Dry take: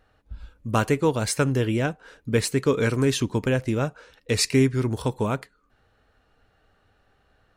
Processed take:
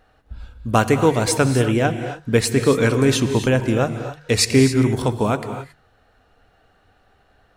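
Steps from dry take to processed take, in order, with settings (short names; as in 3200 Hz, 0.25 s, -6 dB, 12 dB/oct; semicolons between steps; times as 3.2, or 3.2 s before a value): bell 720 Hz +6 dB 0.23 oct; notches 50/100/150 Hz; non-linear reverb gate 0.3 s rising, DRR 8.5 dB; gain +5 dB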